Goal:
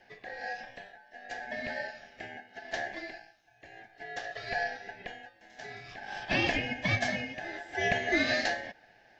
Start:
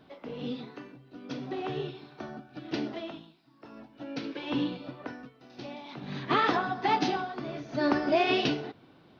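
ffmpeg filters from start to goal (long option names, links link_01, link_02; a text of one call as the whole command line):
ffmpeg -i in.wav -af "afreqshift=210,aeval=exprs='val(0)*sin(2*PI*1200*n/s)':channel_layout=same" out.wav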